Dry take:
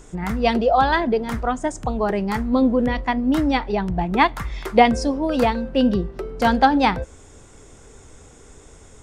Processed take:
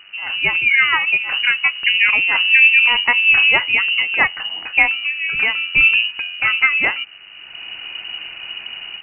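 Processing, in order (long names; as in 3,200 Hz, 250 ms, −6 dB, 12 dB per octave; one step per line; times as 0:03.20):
automatic gain control gain up to 15 dB
hum with harmonics 100 Hz, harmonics 17, −48 dBFS −3 dB per octave
voice inversion scrambler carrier 2,900 Hz
level −1.5 dB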